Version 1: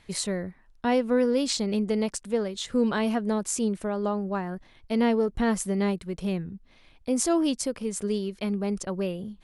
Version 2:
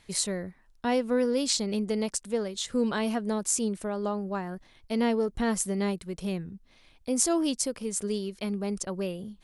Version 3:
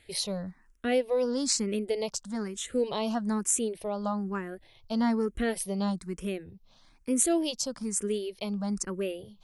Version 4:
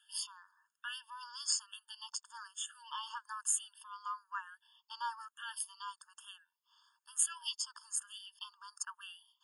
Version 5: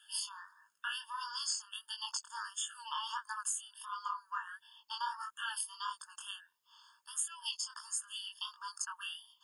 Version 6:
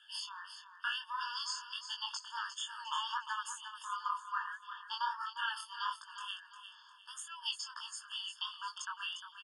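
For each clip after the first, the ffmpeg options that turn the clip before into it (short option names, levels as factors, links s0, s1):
-af "bass=f=250:g=-1,treble=f=4000:g=6,volume=0.75"
-filter_complex "[0:a]asplit=2[s0][s1];[s1]afreqshift=1.1[s2];[s0][s2]amix=inputs=2:normalize=1,volume=1.26"
-af "afftfilt=real='re*eq(mod(floor(b*sr/1024/900),2),1)':imag='im*eq(mod(floor(b*sr/1024/900),2),1)':win_size=1024:overlap=0.75,volume=0.794"
-af "acompressor=threshold=0.00794:ratio=6,flanger=delay=18:depth=7.3:speed=1.5,volume=3.35"
-af "highpass=690,lowpass=4200,aecho=1:1:353|706|1059|1412:0.316|0.111|0.0387|0.0136,volume=1.41"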